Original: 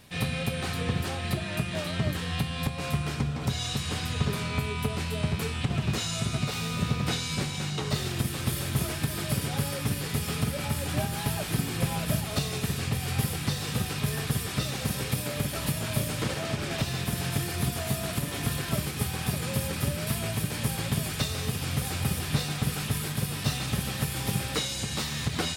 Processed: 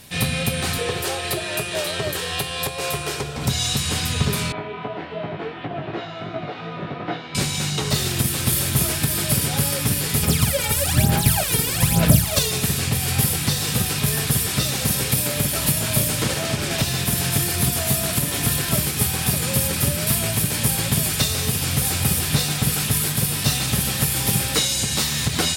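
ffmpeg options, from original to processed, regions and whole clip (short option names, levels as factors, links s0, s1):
-filter_complex "[0:a]asettb=1/sr,asplit=3[s0][s1][s2];[s0]atrim=end=0.784[s3];[s1]atrim=start=0.78:end=3.37,asetpts=PTS-STARTPTS,afade=t=in:d=0.004:c=qsin,afade=t=out:st=2.586:d=0.004:c=qsin,highpass=63,lowshelf=f=310:t=q:w=3:g=-7.5,bandreject=f=2100:w=29[s4];[s2]atrim=start=3.366[s5];[s3][s4]acrossfade=d=0.004:c1=hsin:c2=qsin[s6];[s6][s5]acrossfade=d=0.004:c1=qsin:c2=hsin,asettb=1/sr,asplit=3[s7][s8][s9];[s7]atrim=end=4.524[s10];[s8]atrim=start=4.52:end=7.35,asetpts=PTS-STARTPTS,afade=t=in:d=0.004:c=qsin,afade=t=out:st=2.826:d=0.004:c=qsin,highpass=220,equalizer=f=230:t=q:w=4:g=-7,equalizer=f=320:t=q:w=4:g=9,equalizer=f=690:t=q:w=4:g=9,equalizer=f=2500:t=q:w=4:g=-8,lowpass=f=2600:w=0.5412,lowpass=f=2600:w=1.3066,flanger=delay=17:depth=3.7:speed=2.7[s11];[s9]atrim=start=7.346[s12];[s10][s11]acrossfade=d=0.004:c1=hsin:c2=qsin[s13];[s13][s12]acrossfade=d=0.004:c1=qsin:c2=hsin,asettb=1/sr,asplit=3[s14][s15][s16];[s14]atrim=end=10.234[s17];[s15]atrim=start=10.23:end=12.51,asetpts=PTS-STARTPTS,afade=t=in:d=0.004:c=qsin,afade=t=out:st=2.276:d=0.004:c=qsin,aeval=exprs='sgn(val(0))*max(abs(val(0))-0.00631,0)':c=same,aphaser=in_gain=1:out_gain=1:delay=2.2:decay=0.7:speed=1.1:type=sinusoidal[s18];[s16]atrim=start=12.506[s19];[s17][s18]acrossfade=d=0.004:c1=hsin:c2=qsin[s20];[s20][s19]acrossfade=d=0.004:c1=qsin:c2=hsin,bandreject=f=1200:w=24,acontrast=71,aemphasis=mode=production:type=cd"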